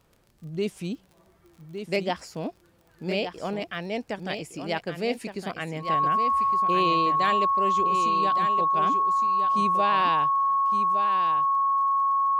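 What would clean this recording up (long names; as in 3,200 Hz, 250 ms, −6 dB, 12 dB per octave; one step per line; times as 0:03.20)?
click removal
notch filter 1,100 Hz, Q 30
echo removal 1,163 ms −8 dB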